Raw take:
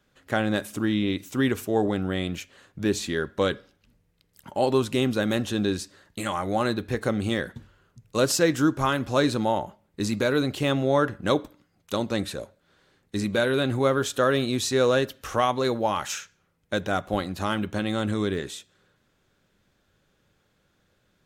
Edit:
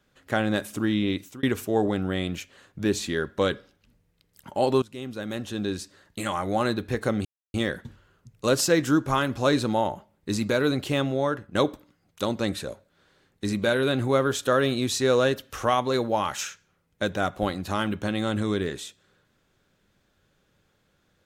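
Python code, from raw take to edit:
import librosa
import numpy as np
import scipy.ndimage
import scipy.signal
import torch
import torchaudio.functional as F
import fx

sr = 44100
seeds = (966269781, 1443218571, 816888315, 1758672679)

y = fx.edit(x, sr, fx.fade_out_span(start_s=1.18, length_s=0.25),
    fx.fade_in_from(start_s=4.82, length_s=1.4, floor_db=-19.0),
    fx.insert_silence(at_s=7.25, length_s=0.29),
    fx.fade_out_to(start_s=10.58, length_s=0.68, floor_db=-9.0), tone=tone)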